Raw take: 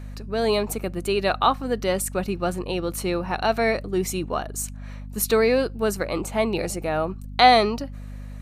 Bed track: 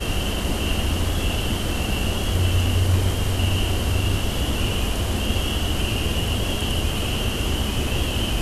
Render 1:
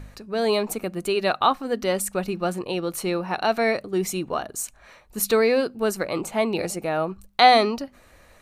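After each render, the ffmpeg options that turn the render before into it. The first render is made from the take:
ffmpeg -i in.wav -af "bandreject=frequency=50:width_type=h:width=4,bandreject=frequency=100:width_type=h:width=4,bandreject=frequency=150:width_type=h:width=4,bandreject=frequency=200:width_type=h:width=4,bandreject=frequency=250:width_type=h:width=4" out.wav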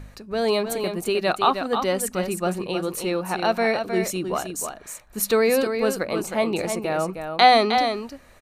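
ffmpeg -i in.wav -af "aecho=1:1:312:0.447" out.wav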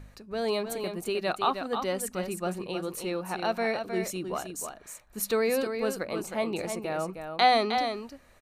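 ffmpeg -i in.wav -af "volume=-7dB" out.wav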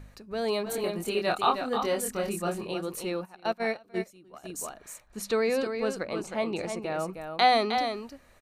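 ffmpeg -i in.wav -filter_complex "[0:a]asettb=1/sr,asplit=3[link_01][link_02][link_03];[link_01]atrim=end=0.644[link_04];[link_02]atrim=start=0.64:end=2.74,asetpts=PTS-STARTPTS,afade=type=in:duration=0.004:curve=qsin,afade=type=out:start_time=2.096:duration=0.004:curve=qsin,asplit=2[link_05][link_06];[link_06]adelay=24,volume=-2.5dB[link_07];[link_05][link_07]amix=inputs=2:normalize=0,atrim=end_sample=92610[link_08];[link_03]atrim=start=2.736[link_09];[link_04][link_08]acrossfade=duration=0.004:curve1=hsin:curve2=qsin[link_10];[link_10][link_09]acrossfade=duration=0.004:curve1=qsin:curve2=hsin,asplit=3[link_11][link_12][link_13];[link_11]afade=type=out:start_time=3.24:duration=0.02[link_14];[link_12]agate=range=-20dB:threshold=-29dB:ratio=16:release=100:detection=peak,afade=type=in:start_time=3.24:duration=0.02,afade=type=out:start_time=4.43:duration=0.02[link_15];[link_13]afade=type=in:start_time=4.43:duration=0.02[link_16];[link_14][link_15][link_16]amix=inputs=3:normalize=0,asettb=1/sr,asplit=3[link_17][link_18][link_19];[link_17]atrim=end=5.074[link_20];[link_18]atrim=start=5.07:end=6.98,asetpts=PTS-STARTPTS,afade=type=in:duration=0.004:curve=qsin,afade=type=out:start_time=1.906:duration=0.004:curve=qsin,lowpass=7500[link_21];[link_19]atrim=start=6.976[link_22];[link_20][link_21]acrossfade=duration=0.004:curve1=hsin:curve2=qsin[link_23];[link_23][link_22]acrossfade=duration=0.004:curve1=qsin:curve2=hsin" out.wav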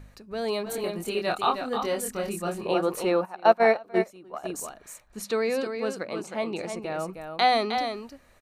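ffmpeg -i in.wav -filter_complex "[0:a]asettb=1/sr,asplit=3[link_01][link_02][link_03];[link_01]atrim=end=2.654[link_04];[link_02]atrim=start=2.65:end=4.6,asetpts=PTS-STARTPTS,afade=type=in:duration=0.004:curve=qsin,afade=type=out:start_time=1.946:duration=0.004:curve=qsin,equalizer=frequency=800:width=0.47:gain=12.5[link_05];[link_03]atrim=start=4.596[link_06];[link_04][link_05]acrossfade=duration=0.004:curve1=hsin:curve2=qsin[link_07];[link_07][link_06]acrossfade=duration=0.004:curve1=qsin:curve2=hsin,asettb=1/sr,asplit=3[link_08][link_09][link_10];[link_08]atrim=end=5.244[link_11];[link_09]atrim=start=5.24:end=6.74,asetpts=PTS-STARTPTS,afade=type=in:duration=0.004:curve=qsin,afade=type=out:start_time=1.496:duration=0.004:curve=qsin,highpass=130[link_12];[link_10]atrim=start=6.736[link_13];[link_11][link_12]acrossfade=duration=0.004:curve1=hsin:curve2=qsin[link_14];[link_14][link_13]acrossfade=duration=0.004:curve1=qsin:curve2=hsin" out.wav

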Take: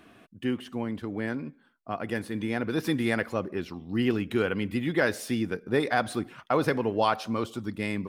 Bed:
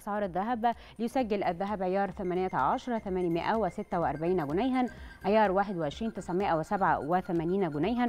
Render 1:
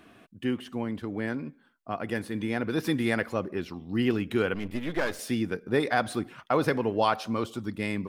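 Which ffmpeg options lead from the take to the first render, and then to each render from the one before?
ffmpeg -i in.wav -filter_complex "[0:a]asettb=1/sr,asplit=3[link_01][link_02][link_03];[link_01]atrim=end=4.544[link_04];[link_02]atrim=start=4.54:end=5.19,asetpts=PTS-STARTPTS,afade=type=in:duration=0.004:curve=qsin,afade=type=out:start_time=0.646:duration=0.004:curve=qsin,aeval=exprs='if(lt(val(0),0),0.251*val(0),val(0))':channel_layout=same[link_05];[link_03]atrim=start=5.186[link_06];[link_04][link_05]acrossfade=duration=0.004:curve1=hsin:curve2=qsin[link_07];[link_07][link_06]acrossfade=duration=0.004:curve1=qsin:curve2=hsin" out.wav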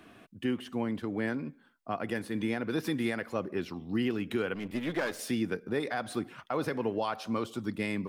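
ffmpeg -i in.wav -filter_complex "[0:a]acrossover=split=110[link_01][link_02];[link_01]acompressor=threshold=-53dB:ratio=6[link_03];[link_03][link_02]amix=inputs=2:normalize=0,alimiter=limit=-20.5dB:level=0:latency=1:release=282" out.wav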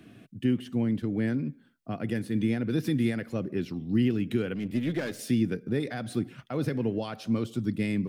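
ffmpeg -i in.wav -af "equalizer=frequency=125:width_type=o:width=1:gain=11,equalizer=frequency=250:width_type=o:width=1:gain=4,equalizer=frequency=1000:width_type=o:width=1:gain=-10" out.wav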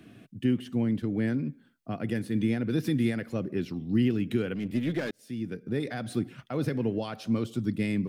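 ffmpeg -i in.wav -filter_complex "[0:a]asplit=2[link_01][link_02];[link_01]atrim=end=5.11,asetpts=PTS-STARTPTS,afade=type=out:start_time=5.106:duration=0.004:curve=hsin[link_03];[link_02]atrim=start=5.11,asetpts=PTS-STARTPTS,afade=type=in:duration=0.78[link_04];[link_03][link_04]concat=n=2:v=0:a=1" out.wav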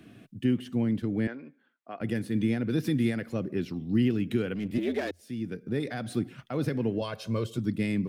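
ffmpeg -i in.wav -filter_complex "[0:a]asettb=1/sr,asplit=3[link_01][link_02][link_03];[link_01]atrim=end=1.274[link_04];[link_02]atrim=start=1.27:end=2.01,asetpts=PTS-STARTPTS,afade=type=in:duration=0.004:curve=qsin,afade=type=out:start_time=0.736:duration=0.004:curve=qsin,highpass=540,lowpass=2600[link_05];[link_03]atrim=start=2.006[link_06];[link_04][link_05]acrossfade=duration=0.004:curve1=hsin:curve2=qsin[link_07];[link_07][link_06]acrossfade=duration=0.004:curve1=qsin:curve2=hsin,asettb=1/sr,asplit=3[link_08][link_09][link_10];[link_08]atrim=end=4.784[link_11];[link_09]atrim=start=4.78:end=5.21,asetpts=PTS-STARTPTS,afade=type=in:duration=0.004:curve=qsin,afade=type=out:start_time=0.426:duration=0.004:curve=qsin,afreqshift=86[link_12];[link_10]atrim=start=5.206[link_13];[link_11][link_12]acrossfade=duration=0.004:curve1=hsin:curve2=qsin[link_14];[link_14][link_13]acrossfade=duration=0.004:curve1=qsin:curve2=hsin,asettb=1/sr,asplit=3[link_15][link_16][link_17];[link_15]atrim=end=7.014[link_18];[link_16]atrim=start=7.01:end=7.58,asetpts=PTS-STARTPTS,afade=type=in:duration=0.004:curve=qsin,afade=type=out:start_time=0.566:duration=0.004:curve=qsin,aecho=1:1:1.9:0.72,atrim=end_sample=25137[link_19];[link_17]atrim=start=7.576[link_20];[link_18][link_19]acrossfade=duration=0.004:curve1=hsin:curve2=qsin[link_21];[link_21][link_20]acrossfade=duration=0.004:curve1=qsin:curve2=hsin" out.wav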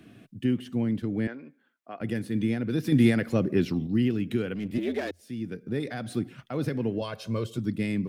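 ffmpeg -i in.wav -filter_complex "[0:a]asettb=1/sr,asplit=3[link_01][link_02][link_03];[link_01]atrim=end=2.924[link_04];[link_02]atrim=start=2.92:end=3.87,asetpts=PTS-STARTPTS,afade=type=in:duration=0.004:curve=qsin,afade=type=out:start_time=0.946:duration=0.004:curve=qsin,acontrast=73[link_05];[link_03]atrim=start=3.866[link_06];[link_04][link_05]acrossfade=duration=0.004:curve1=hsin:curve2=qsin[link_07];[link_07][link_06]acrossfade=duration=0.004:curve1=qsin:curve2=hsin" out.wav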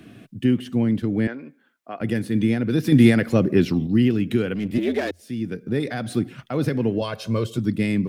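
ffmpeg -i in.wav -af "volume=6.5dB" out.wav

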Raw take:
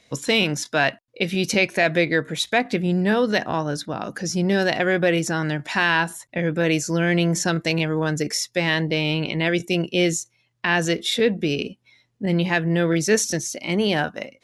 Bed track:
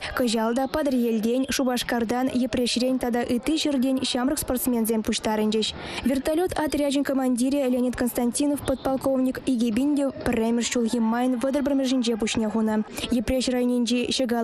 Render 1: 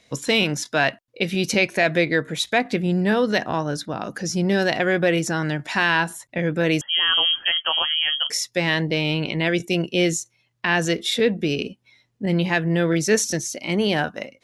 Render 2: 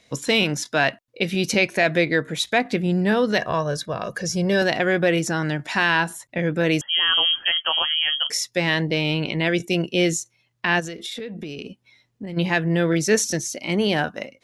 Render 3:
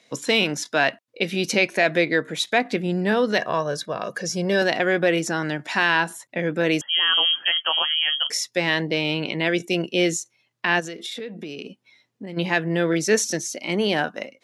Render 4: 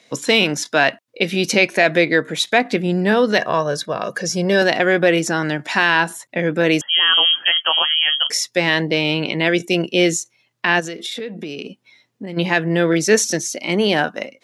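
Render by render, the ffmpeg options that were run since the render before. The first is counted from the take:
ffmpeg -i in.wav -filter_complex "[0:a]asettb=1/sr,asplit=3[link_01][link_02][link_03];[link_01]atrim=end=6.814[link_04];[link_02]atrim=start=6.81:end=8.3,asetpts=PTS-STARTPTS,afade=type=in:duration=0.004:curve=qsin,afade=type=out:start_time=1.486:duration=0.004:curve=qsin,lowpass=frequency=2900:width_type=q:width=0.5098,lowpass=frequency=2900:width_type=q:width=0.6013,lowpass=frequency=2900:width_type=q:width=0.9,lowpass=frequency=2900:width_type=q:width=2.563,afreqshift=-3400[link_05];[link_03]atrim=start=8.296[link_06];[link_04][link_05]acrossfade=duration=0.004:curve1=hsin:curve2=qsin[link_07];[link_07][link_06]acrossfade=duration=0.004:curve1=qsin:curve2=hsin" out.wav
ffmpeg -i in.wav -filter_complex "[0:a]asettb=1/sr,asplit=3[link_01][link_02][link_03];[link_01]atrim=end=3.384[link_04];[link_02]atrim=start=3.38:end=4.62,asetpts=PTS-STARTPTS,afade=type=in:duration=0.004:curve=qsin,afade=type=out:start_time=1.236:duration=0.004:curve=qsin,aecho=1:1:1.8:0.65,atrim=end_sample=54684[link_05];[link_03]atrim=start=4.616[link_06];[link_04][link_05]acrossfade=duration=0.004:curve1=hsin:curve2=qsin[link_07];[link_07][link_06]acrossfade=duration=0.004:curve1=qsin:curve2=hsin,asplit=3[link_08][link_09][link_10];[link_08]afade=type=out:start_time=10.79:duration=0.02[link_11];[link_09]acompressor=threshold=-28dB:ratio=16:attack=3.2:release=140:knee=1:detection=peak,afade=type=in:start_time=10.79:duration=0.02,afade=type=out:start_time=12.36:duration=0.02[link_12];[link_10]afade=type=in:start_time=12.36:duration=0.02[link_13];[link_11][link_12][link_13]amix=inputs=3:normalize=0" out.wav
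ffmpeg -i in.wav -af "highpass=200,highshelf=frequency=11000:gain=-4.5" out.wav
ffmpeg -i in.wav -af "volume=5dB,alimiter=limit=-2dB:level=0:latency=1" out.wav

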